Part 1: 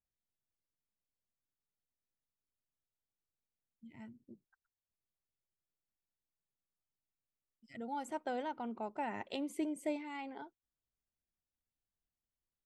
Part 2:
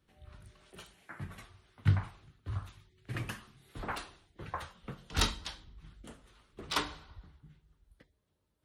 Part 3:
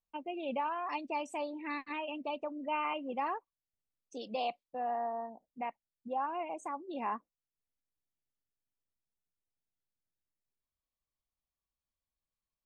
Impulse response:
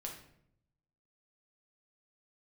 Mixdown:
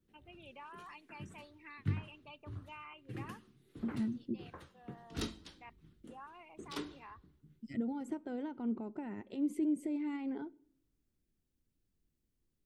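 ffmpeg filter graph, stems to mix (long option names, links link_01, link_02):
-filter_complex "[0:a]alimiter=level_in=11.5dB:limit=-24dB:level=0:latency=1:release=301,volume=-11.5dB,volume=2dB,asplit=3[link_01][link_02][link_03];[link_02]volume=-23dB[link_04];[1:a]highpass=frequency=290:poles=1,volume=-12.5dB[link_05];[2:a]highpass=1300,volume=-9.5dB,asplit=2[link_06][link_07];[link_07]volume=-22.5dB[link_08];[link_03]apad=whole_len=557940[link_09];[link_06][link_09]sidechaincompress=threshold=-56dB:ratio=8:attack=16:release=1480[link_10];[link_01][link_10]amix=inputs=2:normalize=0,adynamicequalizer=threshold=0.001:dfrequency=1300:dqfactor=0.89:tfrequency=1300:tqfactor=0.89:attack=5:release=100:ratio=0.375:range=3:mode=boostabove:tftype=bell,alimiter=level_in=17dB:limit=-24dB:level=0:latency=1:release=378,volume=-17dB,volume=0dB[link_11];[3:a]atrim=start_sample=2205[link_12];[link_04][link_08]amix=inputs=2:normalize=0[link_13];[link_13][link_12]afir=irnorm=-1:irlink=0[link_14];[link_05][link_11][link_14]amix=inputs=3:normalize=0,lowshelf=frequency=500:width_type=q:width=1.5:gain=13"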